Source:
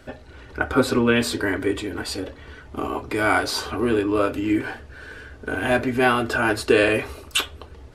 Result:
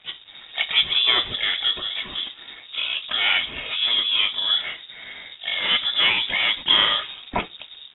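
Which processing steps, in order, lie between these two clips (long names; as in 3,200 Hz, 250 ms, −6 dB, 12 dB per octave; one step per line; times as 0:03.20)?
low-shelf EQ 200 Hz −2 dB
in parallel at −0.5 dB: downward compressor 6 to 1, threshold −28 dBFS, peak gain reduction 14.5 dB
on the sum: dead-zone distortion −44.5 dBFS
pitch-shifted copies added +4 semitones −8 dB, +12 semitones −14 dB
voice inversion scrambler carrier 3,700 Hz
level −3 dB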